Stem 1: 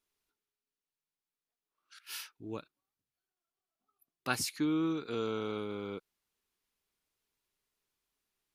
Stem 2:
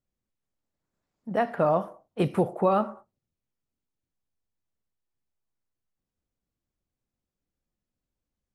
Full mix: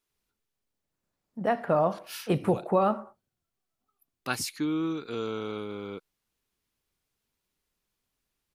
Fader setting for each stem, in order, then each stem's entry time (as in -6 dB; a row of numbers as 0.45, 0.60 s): +2.0, -1.0 dB; 0.00, 0.10 s